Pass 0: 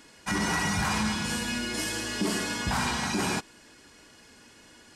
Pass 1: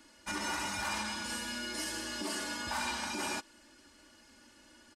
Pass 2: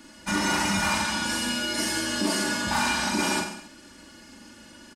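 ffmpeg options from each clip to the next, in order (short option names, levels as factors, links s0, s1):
-filter_complex "[0:a]aecho=1:1:3.4:0.76,acrossover=split=350[s0][s1];[s0]acompressor=threshold=0.0112:ratio=6[s2];[s2][s1]amix=inputs=2:normalize=0,volume=0.398"
-af "equalizer=f=170:w=1.5:g=10.5,aecho=1:1:40|86|138.9|199.7|269.7:0.631|0.398|0.251|0.158|0.1,volume=2.51"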